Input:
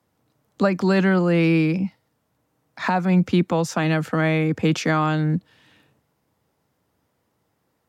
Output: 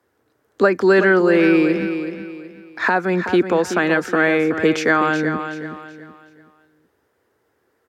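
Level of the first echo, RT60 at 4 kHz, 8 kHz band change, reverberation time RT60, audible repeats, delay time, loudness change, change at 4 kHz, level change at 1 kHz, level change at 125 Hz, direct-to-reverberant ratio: −9.0 dB, no reverb audible, +0.5 dB, no reverb audible, 3, 375 ms, +3.5 dB, +1.5 dB, +4.0 dB, −8.0 dB, no reverb audible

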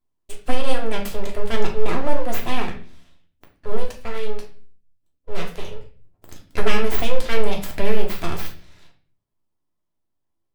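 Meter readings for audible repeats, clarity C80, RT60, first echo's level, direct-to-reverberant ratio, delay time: no echo audible, 14.0 dB, 0.45 s, no echo audible, 0.5 dB, no echo audible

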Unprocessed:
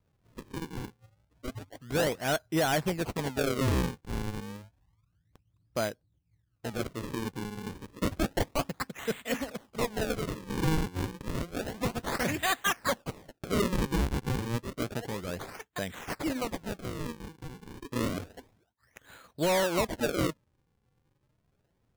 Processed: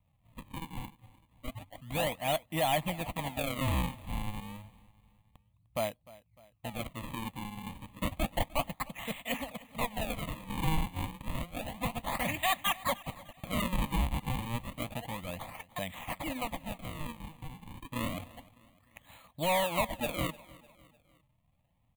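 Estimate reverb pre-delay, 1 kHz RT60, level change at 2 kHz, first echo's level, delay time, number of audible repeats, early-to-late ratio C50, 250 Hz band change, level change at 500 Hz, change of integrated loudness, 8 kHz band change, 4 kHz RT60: no reverb audible, no reverb audible, −3.0 dB, −21.0 dB, 302 ms, 3, no reverb audible, −5.5 dB, −5.0 dB, −3.0 dB, −4.0 dB, no reverb audible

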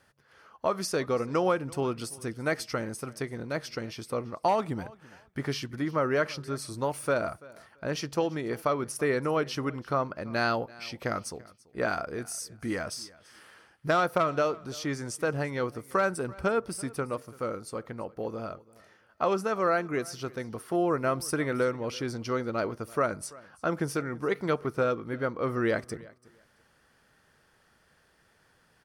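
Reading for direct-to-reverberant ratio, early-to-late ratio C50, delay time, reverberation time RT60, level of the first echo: no reverb audible, no reverb audible, 336 ms, no reverb audible, −22.0 dB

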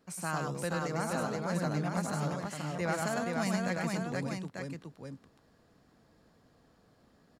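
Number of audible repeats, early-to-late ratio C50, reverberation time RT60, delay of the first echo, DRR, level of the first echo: 3, no reverb audible, no reverb audible, 101 ms, no reverb audible, −3.5 dB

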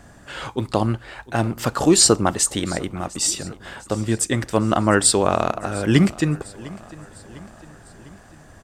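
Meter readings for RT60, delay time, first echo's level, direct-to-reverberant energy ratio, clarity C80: no reverb audible, 702 ms, −20.5 dB, no reverb audible, no reverb audible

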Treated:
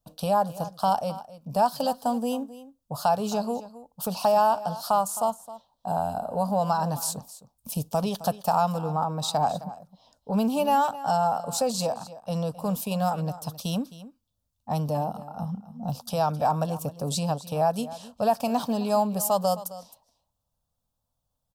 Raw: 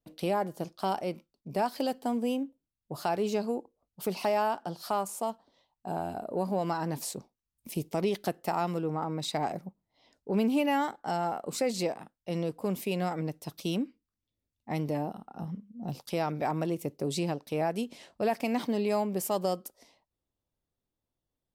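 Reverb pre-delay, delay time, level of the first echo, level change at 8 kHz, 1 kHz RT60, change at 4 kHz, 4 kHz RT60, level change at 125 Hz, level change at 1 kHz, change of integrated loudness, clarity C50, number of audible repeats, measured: no reverb audible, 264 ms, −16.0 dB, +8.0 dB, no reverb audible, +4.5 dB, no reverb audible, +5.5 dB, +8.5 dB, +5.5 dB, no reverb audible, 1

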